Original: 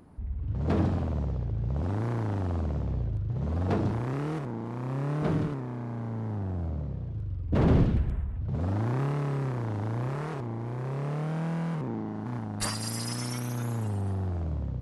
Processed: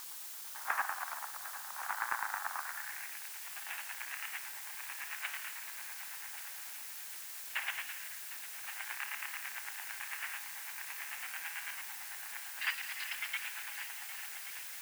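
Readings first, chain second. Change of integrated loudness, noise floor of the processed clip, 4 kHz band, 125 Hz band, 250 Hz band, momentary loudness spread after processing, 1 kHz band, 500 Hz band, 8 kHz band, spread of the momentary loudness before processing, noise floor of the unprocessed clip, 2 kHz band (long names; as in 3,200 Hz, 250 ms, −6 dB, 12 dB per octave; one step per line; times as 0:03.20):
−9.0 dB, −46 dBFS, 0.0 dB, below −40 dB, below −40 dB, 6 LU, −4.0 dB, −26.5 dB, can't be measured, 8 LU, −35 dBFS, +7.0 dB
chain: flat-topped bell 2,100 Hz +12 dB 1.1 octaves
square-wave tremolo 9 Hz, depth 60%, duty 35%
high-frequency loss of the air 400 metres
echo machine with several playback heads 377 ms, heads all three, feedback 71%, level −16.5 dB
band-pass filter sweep 1,200 Hz → 3,600 Hz, 0:02.57–0:03.39
Chebyshev band-pass filter 790–9,800 Hz, order 4
background noise blue −57 dBFS
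highs frequency-modulated by the lows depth 0.31 ms
level +12.5 dB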